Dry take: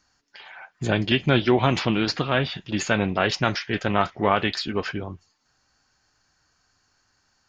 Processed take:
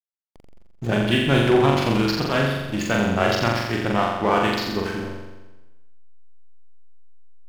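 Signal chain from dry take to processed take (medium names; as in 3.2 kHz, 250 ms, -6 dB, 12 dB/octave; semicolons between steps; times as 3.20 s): hysteresis with a dead band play -26 dBFS; flutter echo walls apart 7.4 m, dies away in 1.1 s; trim -1 dB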